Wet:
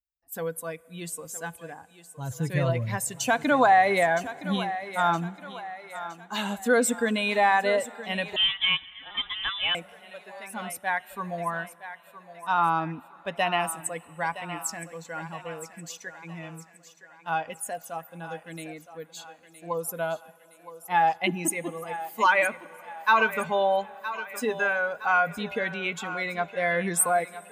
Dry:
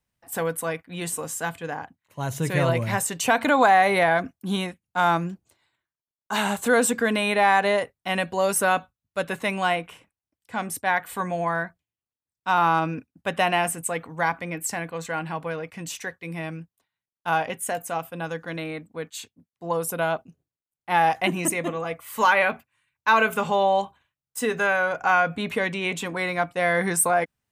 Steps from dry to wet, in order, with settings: per-bin expansion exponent 1.5; thinning echo 0.966 s, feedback 50%, high-pass 370 Hz, level -12.5 dB; on a send at -22.5 dB: reverb RT60 4.8 s, pre-delay 45 ms; 8.36–9.75 on the sum: inverted band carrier 3700 Hz

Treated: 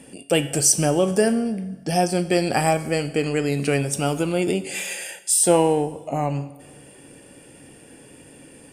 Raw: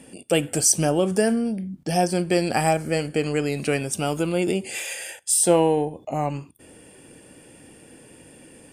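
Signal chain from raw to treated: resonator 140 Hz, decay 0.51 s, harmonics all, mix 60%; reverb RT60 1.5 s, pre-delay 73 ms, DRR 18.5 dB; gain +8 dB

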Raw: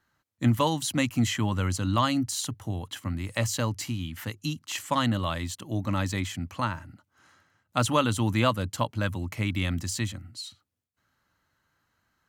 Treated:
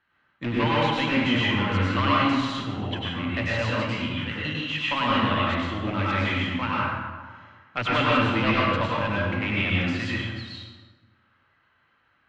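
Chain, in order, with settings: one-sided fold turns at -17.5 dBFS; low shelf 320 Hz -6 dB; in parallel at -9 dB: wrapped overs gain 24.5 dB; on the sum: ladder low-pass 3300 Hz, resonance 45%; plate-style reverb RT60 1.5 s, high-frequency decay 0.55×, pre-delay 85 ms, DRR -6.5 dB; gain +6.5 dB

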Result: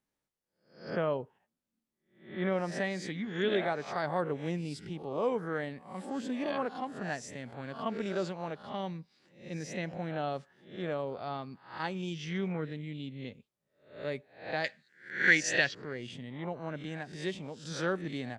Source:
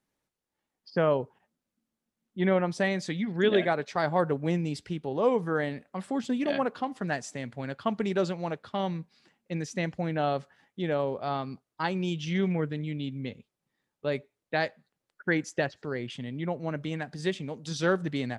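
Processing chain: spectral swells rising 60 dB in 0.46 s; 14.64–15.75 band shelf 3600 Hz +13.5 dB 2.7 oct; gain -7 dB

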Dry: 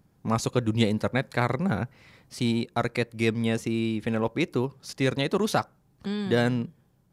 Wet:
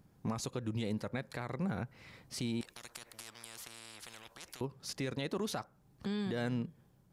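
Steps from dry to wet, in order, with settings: compressor 2:1, threshold -34 dBFS, peak gain reduction 9.5 dB; limiter -25.5 dBFS, peak gain reduction 8.5 dB; 2.61–4.61 spectral compressor 10:1; gain -1.5 dB

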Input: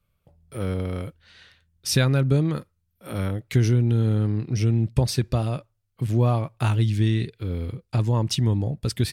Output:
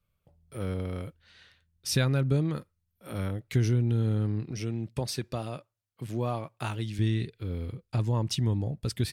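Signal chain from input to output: 4.51–6.99 HPF 260 Hz 6 dB/oct; gain -5.5 dB

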